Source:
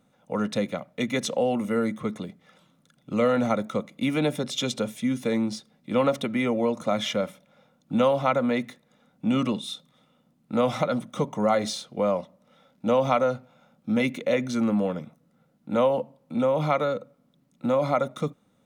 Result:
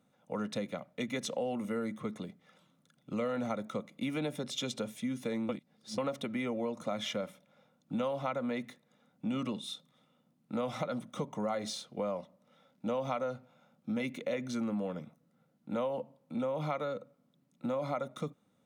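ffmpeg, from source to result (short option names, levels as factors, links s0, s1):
-filter_complex "[0:a]asplit=3[s0][s1][s2];[s0]atrim=end=5.492[s3];[s1]atrim=start=5.488:end=5.982,asetpts=PTS-STARTPTS,areverse[s4];[s2]atrim=start=5.978[s5];[s3][s4]acrossfade=d=0.004:c1=hsin:c2=hsin[s6];[s6][s5]acrossfade=d=0.004:c1=hsin:c2=hsin,highpass=79,acompressor=threshold=0.0501:ratio=2.5,volume=0.473"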